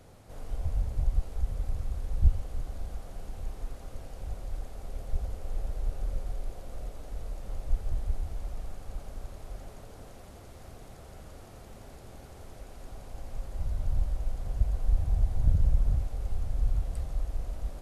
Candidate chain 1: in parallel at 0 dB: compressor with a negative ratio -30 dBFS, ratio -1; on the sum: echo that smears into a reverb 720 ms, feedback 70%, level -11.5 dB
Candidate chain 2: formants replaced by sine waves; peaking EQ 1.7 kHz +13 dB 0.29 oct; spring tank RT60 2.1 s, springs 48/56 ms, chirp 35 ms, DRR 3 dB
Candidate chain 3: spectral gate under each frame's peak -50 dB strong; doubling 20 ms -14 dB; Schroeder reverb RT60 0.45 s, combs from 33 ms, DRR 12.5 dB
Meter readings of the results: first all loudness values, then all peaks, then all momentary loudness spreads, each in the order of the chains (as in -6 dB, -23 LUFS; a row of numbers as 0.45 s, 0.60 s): -31.5 LUFS, -26.5 LUFS, -35.0 LUFS; -9.0 dBFS, -12.5 dBFS, -10.0 dBFS; 13 LU, 4 LU, 20 LU